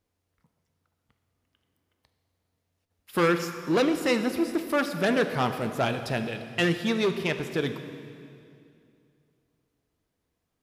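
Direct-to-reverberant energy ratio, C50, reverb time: 7.5 dB, 9.0 dB, 2.5 s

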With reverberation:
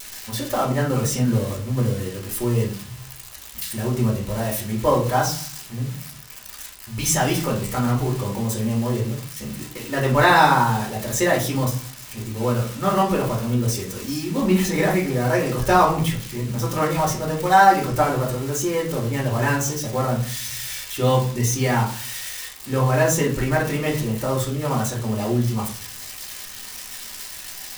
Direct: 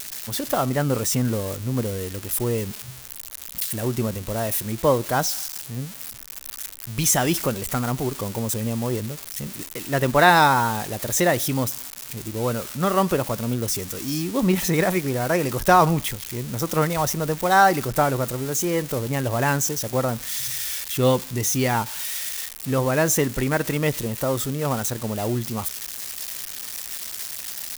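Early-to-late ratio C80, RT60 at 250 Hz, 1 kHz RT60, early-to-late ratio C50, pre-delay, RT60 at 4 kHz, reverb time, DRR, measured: 13.5 dB, 0.60 s, 0.45 s, 8.0 dB, 3 ms, 0.30 s, 0.45 s, -4.0 dB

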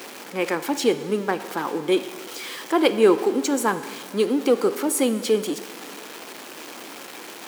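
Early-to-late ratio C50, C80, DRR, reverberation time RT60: 13.0 dB, 14.0 dB, 11.5 dB, 1.8 s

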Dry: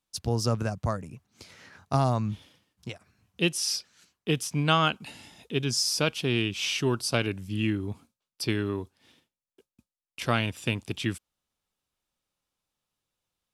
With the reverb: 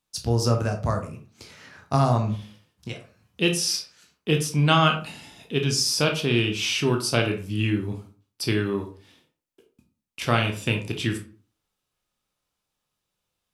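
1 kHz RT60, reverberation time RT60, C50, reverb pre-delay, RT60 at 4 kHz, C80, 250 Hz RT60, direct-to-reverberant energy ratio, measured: 0.40 s, 0.40 s, 9.5 dB, 16 ms, 0.25 s, 15.0 dB, 0.50 s, 3.0 dB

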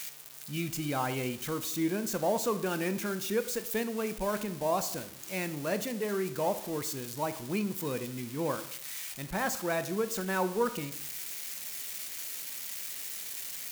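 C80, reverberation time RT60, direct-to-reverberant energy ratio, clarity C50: 16.0 dB, 0.65 s, 11.0 dB, 14.0 dB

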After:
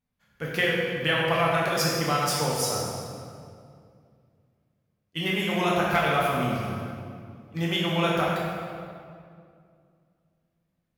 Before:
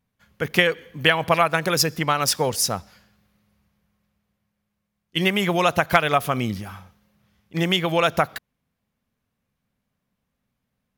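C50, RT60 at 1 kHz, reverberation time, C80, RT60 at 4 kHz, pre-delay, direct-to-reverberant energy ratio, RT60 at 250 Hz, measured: -1.0 dB, 2.1 s, 2.3 s, 0.5 dB, 1.6 s, 6 ms, -5.5 dB, 2.9 s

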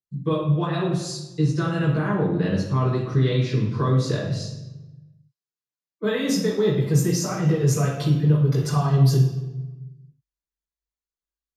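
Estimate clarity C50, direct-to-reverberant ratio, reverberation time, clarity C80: 3.5 dB, -7.0 dB, 1.1 s, 7.0 dB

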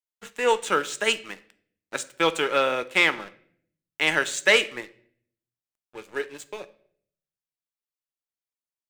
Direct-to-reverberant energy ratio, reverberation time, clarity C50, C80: 12.0 dB, 0.60 s, 18.5 dB, 22.0 dB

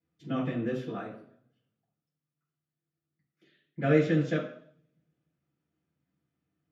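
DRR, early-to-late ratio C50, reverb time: -12.5 dB, 5.5 dB, 0.60 s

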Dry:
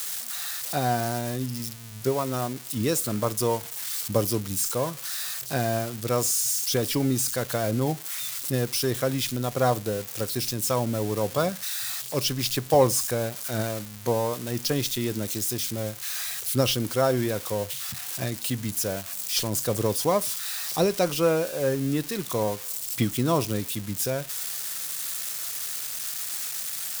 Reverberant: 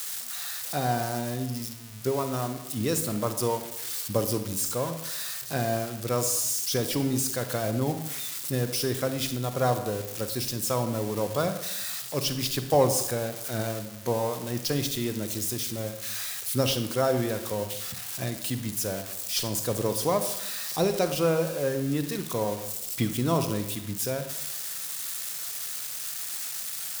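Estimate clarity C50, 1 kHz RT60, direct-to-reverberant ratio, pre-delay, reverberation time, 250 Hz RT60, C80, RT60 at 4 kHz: 9.5 dB, 0.85 s, 8.5 dB, 36 ms, 0.90 s, 1.0 s, 12.0 dB, 0.65 s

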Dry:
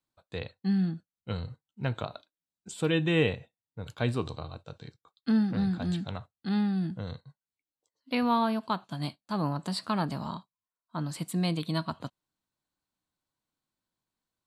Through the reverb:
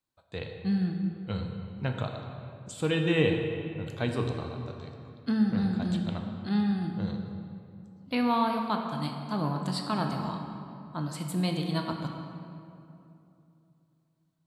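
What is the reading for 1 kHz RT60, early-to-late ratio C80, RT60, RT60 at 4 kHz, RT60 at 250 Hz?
2.7 s, 5.0 dB, 2.8 s, 1.6 s, 3.2 s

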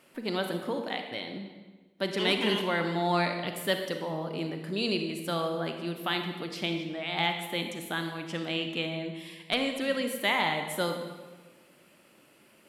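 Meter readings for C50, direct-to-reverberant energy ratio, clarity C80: 6.0 dB, 5.0 dB, 7.5 dB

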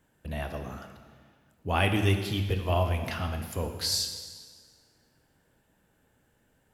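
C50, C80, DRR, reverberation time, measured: 7.5 dB, 8.5 dB, 5.0 dB, 1.6 s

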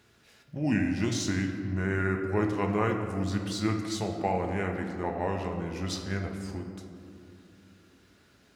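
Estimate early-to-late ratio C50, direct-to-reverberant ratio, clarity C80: 5.0 dB, 2.5 dB, 6.5 dB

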